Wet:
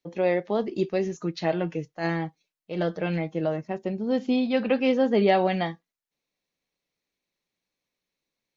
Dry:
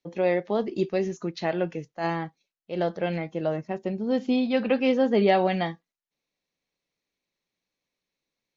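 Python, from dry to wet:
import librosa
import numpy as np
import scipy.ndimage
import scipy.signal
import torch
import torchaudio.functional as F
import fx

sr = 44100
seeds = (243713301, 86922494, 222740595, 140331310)

y = fx.comb(x, sr, ms=6.5, depth=0.52, at=(1.14, 3.46))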